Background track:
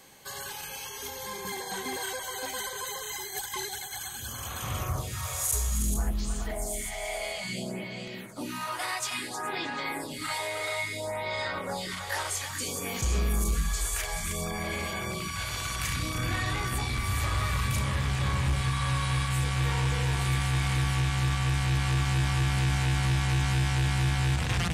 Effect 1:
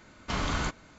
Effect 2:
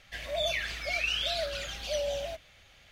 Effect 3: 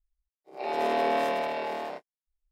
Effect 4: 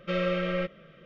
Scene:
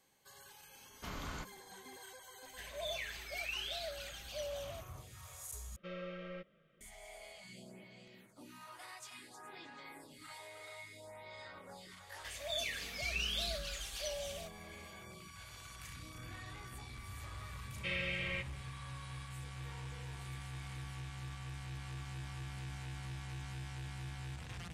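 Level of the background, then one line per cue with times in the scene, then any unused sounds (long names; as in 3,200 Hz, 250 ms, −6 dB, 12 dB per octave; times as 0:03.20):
background track −19 dB
0:00.74: mix in 1 −14 dB
0:02.45: mix in 2 −10.5 dB
0:05.76: overwrite with 4 −17.5 dB
0:12.12: mix in 2 −11.5 dB + high-shelf EQ 3,700 Hz +11.5 dB
0:17.76: mix in 4 −16.5 dB + high shelf with overshoot 1,600 Hz +10.5 dB, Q 3
not used: 3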